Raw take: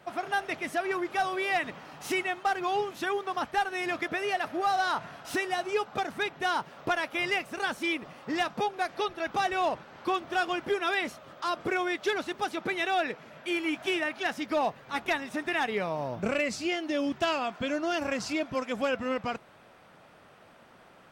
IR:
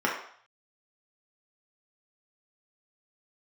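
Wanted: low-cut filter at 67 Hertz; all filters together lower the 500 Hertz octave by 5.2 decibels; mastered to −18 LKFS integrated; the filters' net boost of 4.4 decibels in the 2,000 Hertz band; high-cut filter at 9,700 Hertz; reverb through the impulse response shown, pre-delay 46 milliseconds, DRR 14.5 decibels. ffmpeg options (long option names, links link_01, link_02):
-filter_complex "[0:a]highpass=67,lowpass=9700,equalizer=frequency=500:width_type=o:gain=-8,equalizer=frequency=2000:width_type=o:gain=6,asplit=2[link_01][link_02];[1:a]atrim=start_sample=2205,adelay=46[link_03];[link_02][link_03]afir=irnorm=-1:irlink=0,volume=-27.5dB[link_04];[link_01][link_04]amix=inputs=2:normalize=0,volume=11dB"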